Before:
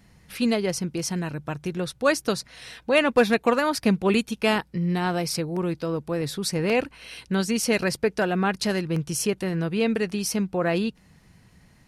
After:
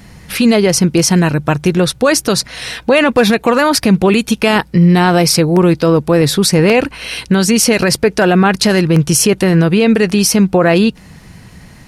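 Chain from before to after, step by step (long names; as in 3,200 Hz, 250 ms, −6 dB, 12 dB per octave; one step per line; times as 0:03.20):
boost into a limiter +18.5 dB
level −1 dB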